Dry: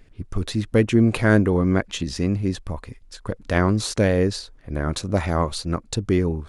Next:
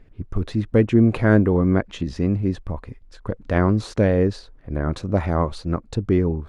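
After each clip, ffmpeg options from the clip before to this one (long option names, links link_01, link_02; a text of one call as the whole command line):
ffmpeg -i in.wav -af "lowpass=frequency=1300:poles=1,volume=1.5dB" out.wav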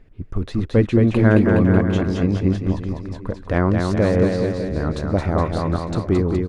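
ffmpeg -i in.wav -af "aecho=1:1:220|418|596.2|756.6|900.9:0.631|0.398|0.251|0.158|0.1" out.wav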